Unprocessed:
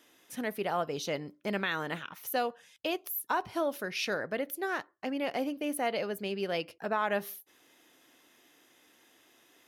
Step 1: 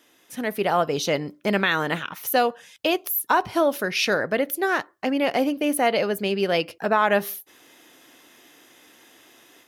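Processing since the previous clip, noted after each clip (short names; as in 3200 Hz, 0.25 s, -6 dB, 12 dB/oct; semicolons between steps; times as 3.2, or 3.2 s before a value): AGC gain up to 7 dB; gain +3.5 dB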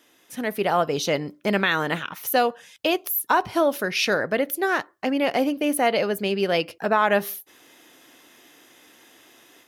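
nothing audible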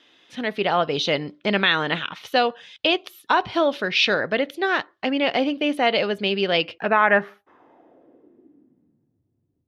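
low-pass sweep 3600 Hz -> 110 Hz, 6.64–9.23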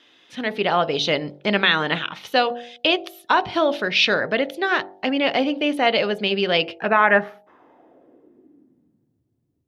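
de-hum 47.95 Hz, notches 19; gain +1.5 dB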